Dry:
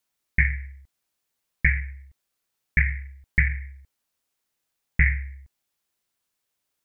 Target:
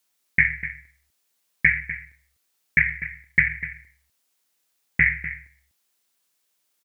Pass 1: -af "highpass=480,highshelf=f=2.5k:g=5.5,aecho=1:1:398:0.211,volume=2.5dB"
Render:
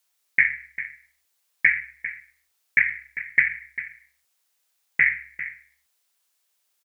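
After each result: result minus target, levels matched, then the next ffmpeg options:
125 Hz band -16.5 dB; echo 0.15 s late
-af "highpass=160,highshelf=f=2.5k:g=5.5,aecho=1:1:398:0.211,volume=2.5dB"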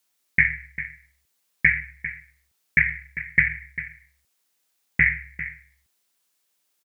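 echo 0.15 s late
-af "highpass=160,highshelf=f=2.5k:g=5.5,aecho=1:1:248:0.211,volume=2.5dB"

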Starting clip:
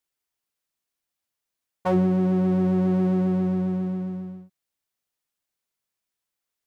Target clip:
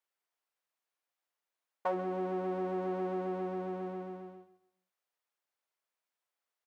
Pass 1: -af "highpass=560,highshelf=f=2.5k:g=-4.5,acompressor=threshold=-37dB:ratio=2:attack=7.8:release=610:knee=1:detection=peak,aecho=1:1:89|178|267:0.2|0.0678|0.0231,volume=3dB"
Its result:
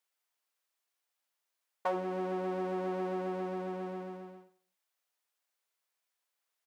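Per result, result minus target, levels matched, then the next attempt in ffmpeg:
echo 49 ms early; 4000 Hz band +5.0 dB
-af "highpass=560,highshelf=f=2.5k:g=-4.5,acompressor=threshold=-37dB:ratio=2:attack=7.8:release=610:knee=1:detection=peak,aecho=1:1:138|276|414:0.2|0.0678|0.0231,volume=3dB"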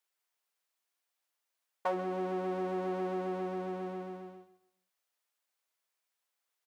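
4000 Hz band +5.0 dB
-af "highpass=560,highshelf=f=2.5k:g=-13,acompressor=threshold=-37dB:ratio=2:attack=7.8:release=610:knee=1:detection=peak,aecho=1:1:138|276|414:0.2|0.0678|0.0231,volume=3dB"

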